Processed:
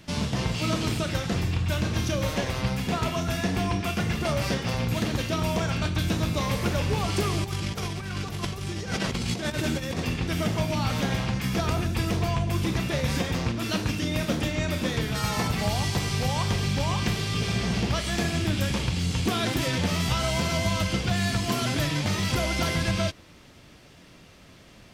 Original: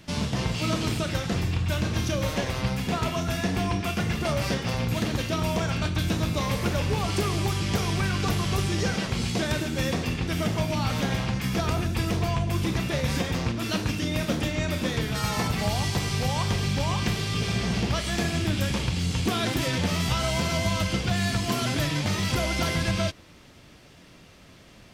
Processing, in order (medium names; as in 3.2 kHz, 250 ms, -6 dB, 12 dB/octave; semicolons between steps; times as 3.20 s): 7.44–10.00 s: compressor with a negative ratio -29 dBFS, ratio -0.5